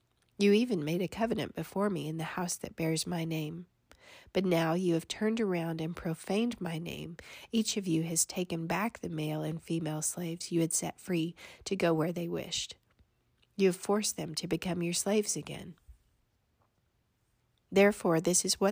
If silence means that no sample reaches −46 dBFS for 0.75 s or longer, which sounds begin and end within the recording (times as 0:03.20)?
0:13.58–0:15.91